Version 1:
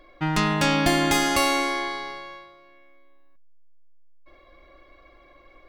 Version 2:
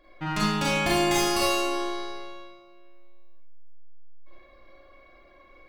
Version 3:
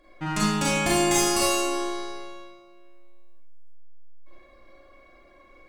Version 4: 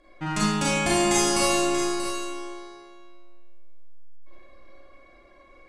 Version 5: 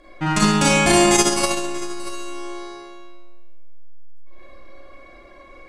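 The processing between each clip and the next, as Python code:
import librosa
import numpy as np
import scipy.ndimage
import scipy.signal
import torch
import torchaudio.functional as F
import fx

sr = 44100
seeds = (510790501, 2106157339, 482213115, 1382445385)

y1 = fx.rev_schroeder(x, sr, rt60_s=0.58, comb_ms=31, drr_db=-5.0)
y1 = F.gain(torch.from_numpy(y1), -7.5).numpy()
y2 = fx.graphic_eq(y1, sr, hz=(250, 4000, 8000), db=(3, -3, 10))
y3 = scipy.signal.sosfilt(scipy.signal.butter(4, 11000.0, 'lowpass', fs=sr, output='sos'), y2)
y3 = y3 + 10.0 ** (-9.5 / 20.0) * np.pad(y3, (int(634 * sr / 1000.0), 0))[:len(y3)]
y4 = fx.transformer_sat(y3, sr, knee_hz=210.0)
y4 = F.gain(torch.from_numpy(y4), 8.5).numpy()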